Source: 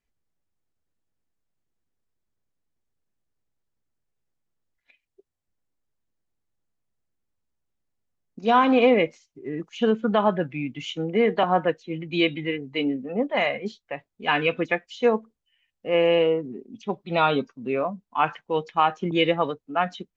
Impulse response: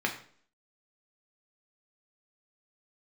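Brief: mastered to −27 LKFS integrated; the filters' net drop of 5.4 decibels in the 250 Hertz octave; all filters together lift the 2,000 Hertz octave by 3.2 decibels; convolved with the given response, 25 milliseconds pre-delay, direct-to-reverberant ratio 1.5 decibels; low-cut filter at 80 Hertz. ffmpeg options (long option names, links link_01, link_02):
-filter_complex "[0:a]highpass=80,equalizer=frequency=250:width_type=o:gain=-7,equalizer=frequency=2000:width_type=o:gain=4,asplit=2[link_01][link_02];[1:a]atrim=start_sample=2205,adelay=25[link_03];[link_02][link_03]afir=irnorm=-1:irlink=0,volume=-10dB[link_04];[link_01][link_04]amix=inputs=2:normalize=0,volume=-5dB"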